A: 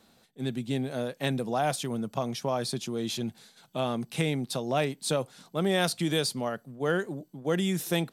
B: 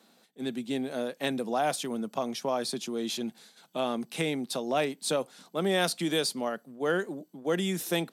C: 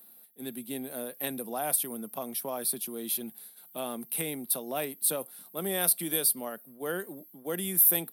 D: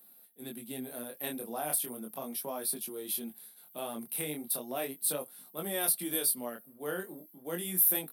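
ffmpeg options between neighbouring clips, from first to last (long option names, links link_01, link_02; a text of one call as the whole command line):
ffmpeg -i in.wav -af "highpass=frequency=190:width=0.5412,highpass=frequency=190:width=1.3066" out.wav
ffmpeg -i in.wav -af "aexciter=amount=12.8:drive=9.5:freq=10000,volume=-6dB" out.wav
ffmpeg -i in.wav -af "flanger=delay=19:depth=7.8:speed=0.36" out.wav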